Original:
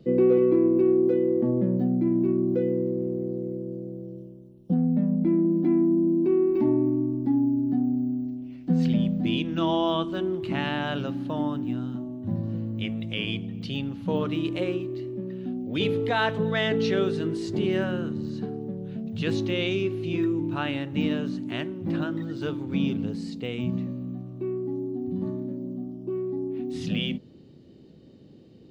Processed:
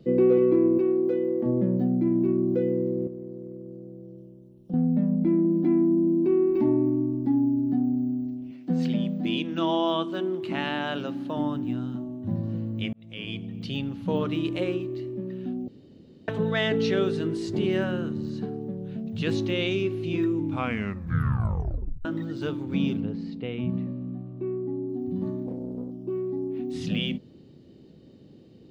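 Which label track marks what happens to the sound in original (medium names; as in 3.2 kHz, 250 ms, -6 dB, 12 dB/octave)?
0.780000	1.460000	bass shelf 230 Hz -10 dB
3.070000	4.740000	compression 1.5:1, threshold -49 dBFS
8.510000	11.370000	high-pass 200 Hz
12.930000	13.870000	fade in equal-power
15.680000	16.280000	room tone
20.410000	20.410000	tape stop 1.64 s
23.000000	24.900000	distance through air 250 m
25.460000	25.910000	loudspeaker Doppler distortion depth 0.51 ms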